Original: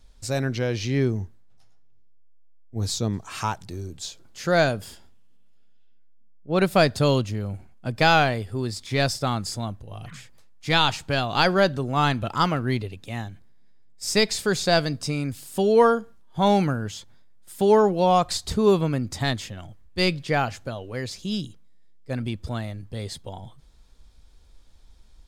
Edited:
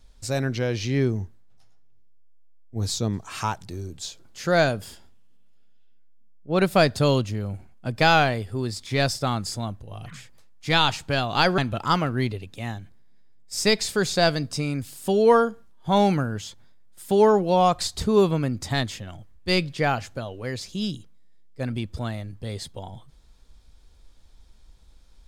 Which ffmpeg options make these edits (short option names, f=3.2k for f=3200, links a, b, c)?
-filter_complex "[0:a]asplit=2[a][b];[a]atrim=end=11.582[c];[b]atrim=start=12.078[d];[c][d]acrossfade=d=0.004:c1=hsin:c2=hsin"